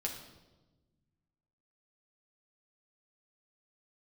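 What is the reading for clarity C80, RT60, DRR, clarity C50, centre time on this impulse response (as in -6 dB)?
9.0 dB, 1.2 s, -0.5 dB, 6.5 dB, 29 ms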